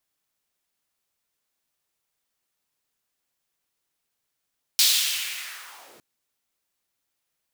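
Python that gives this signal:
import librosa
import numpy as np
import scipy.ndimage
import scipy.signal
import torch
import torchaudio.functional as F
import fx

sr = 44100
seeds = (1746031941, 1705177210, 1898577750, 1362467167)

y = fx.riser_noise(sr, seeds[0], length_s=1.21, colour='pink', kind='highpass', start_hz=4100.0, end_hz=190.0, q=1.9, swell_db=-38.5, law='linear')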